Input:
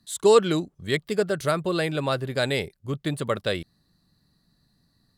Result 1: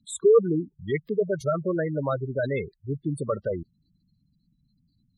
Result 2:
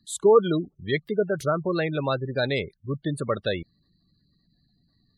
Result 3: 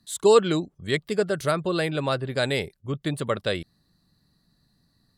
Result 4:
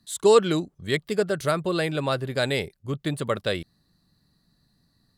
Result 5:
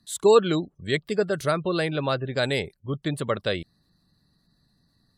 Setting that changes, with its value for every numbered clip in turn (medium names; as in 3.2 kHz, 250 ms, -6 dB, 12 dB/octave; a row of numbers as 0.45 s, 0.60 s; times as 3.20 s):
spectral gate, under each frame's peak: -10 dB, -20 dB, -45 dB, -60 dB, -35 dB